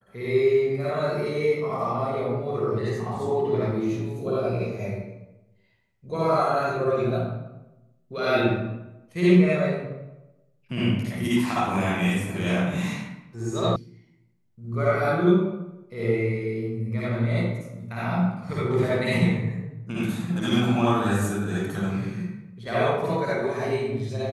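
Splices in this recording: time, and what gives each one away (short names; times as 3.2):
13.76 sound cut off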